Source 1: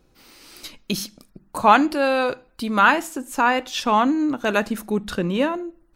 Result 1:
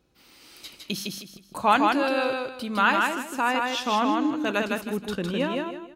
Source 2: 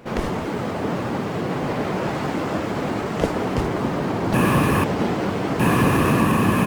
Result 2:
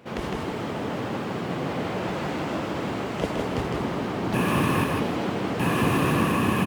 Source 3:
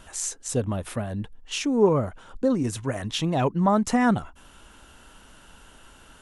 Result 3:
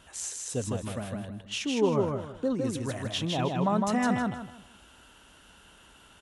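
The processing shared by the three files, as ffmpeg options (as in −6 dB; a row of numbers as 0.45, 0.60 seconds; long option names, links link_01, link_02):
-filter_complex "[0:a]highpass=50,equalizer=frequency=3100:width=1.6:gain=4,asplit=2[link_01][link_02];[link_02]aecho=0:1:158|316|474|632:0.708|0.205|0.0595|0.0173[link_03];[link_01][link_03]amix=inputs=2:normalize=0,volume=-6.5dB"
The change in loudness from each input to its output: −4.0, −4.5, −4.5 LU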